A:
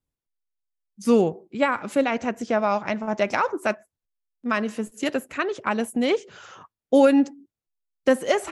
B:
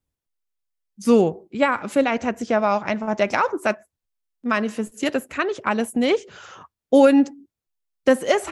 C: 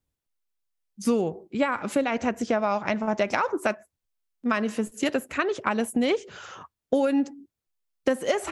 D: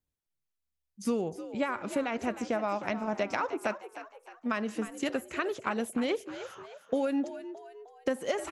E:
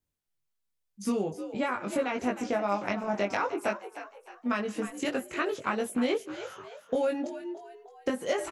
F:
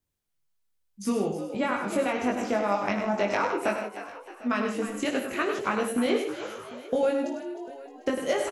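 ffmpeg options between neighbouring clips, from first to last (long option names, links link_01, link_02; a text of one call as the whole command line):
ffmpeg -i in.wav -af "equalizer=frequency=76:width_type=o:width=0.26:gain=7,volume=2.5dB" out.wav
ffmpeg -i in.wav -af "acompressor=threshold=-20dB:ratio=6" out.wav
ffmpeg -i in.wav -filter_complex "[0:a]asplit=5[link_01][link_02][link_03][link_04][link_05];[link_02]adelay=309,afreqshift=71,volume=-12.5dB[link_06];[link_03]adelay=618,afreqshift=142,volume=-19.6dB[link_07];[link_04]adelay=927,afreqshift=213,volume=-26.8dB[link_08];[link_05]adelay=1236,afreqshift=284,volume=-33.9dB[link_09];[link_01][link_06][link_07][link_08][link_09]amix=inputs=5:normalize=0,volume=-6.5dB" out.wav
ffmpeg -i in.wav -filter_complex "[0:a]asplit=2[link_01][link_02];[link_02]adelay=20,volume=-2.5dB[link_03];[link_01][link_03]amix=inputs=2:normalize=0" out.wav
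ffmpeg -i in.wav -af "aecho=1:1:56|100|157|749:0.237|0.447|0.237|0.106,volume=2dB" out.wav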